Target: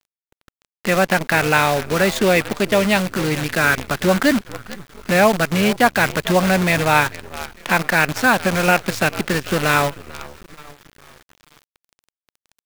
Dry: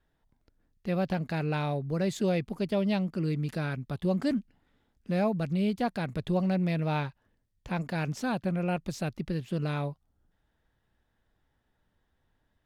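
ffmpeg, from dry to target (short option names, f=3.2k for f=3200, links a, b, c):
-filter_complex "[0:a]asplit=2[a][b];[b]acompressor=threshold=-43dB:ratio=8,volume=2.5dB[c];[a][c]amix=inputs=2:normalize=0,highpass=190,equalizer=f=1.7k:t=o:w=2:g=13,asplit=5[d][e][f][g][h];[e]adelay=443,afreqshift=-68,volume=-15.5dB[i];[f]adelay=886,afreqshift=-136,volume=-22.4dB[j];[g]adelay=1329,afreqshift=-204,volume=-29.4dB[k];[h]adelay=1772,afreqshift=-272,volume=-36.3dB[l];[d][i][j][k][l]amix=inputs=5:normalize=0,acrusher=bits=6:dc=4:mix=0:aa=0.000001,dynaudnorm=f=290:g=3:m=11.5dB"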